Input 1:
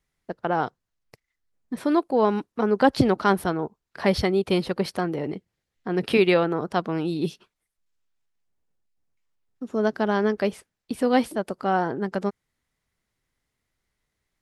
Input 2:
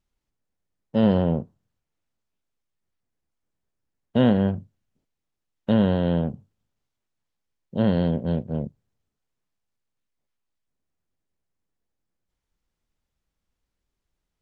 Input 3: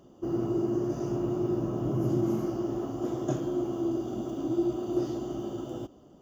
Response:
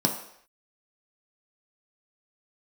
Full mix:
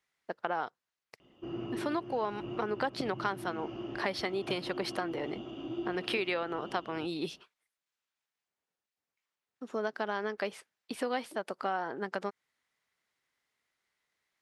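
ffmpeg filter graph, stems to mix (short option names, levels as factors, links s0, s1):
-filter_complex "[0:a]highpass=f=1100:p=1,volume=1.41[s0];[2:a]lowpass=f=2700:t=q:w=5.2,highshelf=f=2100:g=11.5,adelay=1200,volume=0.335[s1];[s0][s1]amix=inputs=2:normalize=0,lowpass=f=3800:p=1,acompressor=threshold=0.0316:ratio=4"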